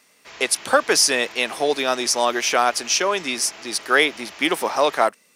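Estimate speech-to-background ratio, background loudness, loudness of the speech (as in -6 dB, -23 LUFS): 19.0 dB, -39.0 LUFS, -20.0 LUFS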